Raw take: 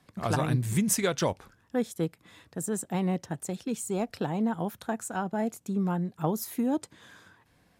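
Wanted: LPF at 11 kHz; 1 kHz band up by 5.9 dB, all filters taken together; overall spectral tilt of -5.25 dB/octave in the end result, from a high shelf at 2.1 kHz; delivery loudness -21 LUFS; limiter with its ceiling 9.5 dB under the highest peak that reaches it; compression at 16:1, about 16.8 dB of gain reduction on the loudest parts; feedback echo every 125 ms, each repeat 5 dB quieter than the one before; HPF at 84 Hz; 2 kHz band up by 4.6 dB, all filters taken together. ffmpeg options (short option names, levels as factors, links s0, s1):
-af "highpass=84,lowpass=11000,equalizer=f=1000:t=o:g=7.5,equalizer=f=2000:t=o:g=5.5,highshelf=f=2100:g=-4.5,acompressor=threshold=0.0141:ratio=16,alimiter=level_in=2.37:limit=0.0631:level=0:latency=1,volume=0.422,aecho=1:1:125|250|375|500|625|750|875:0.562|0.315|0.176|0.0988|0.0553|0.031|0.0173,volume=12.6"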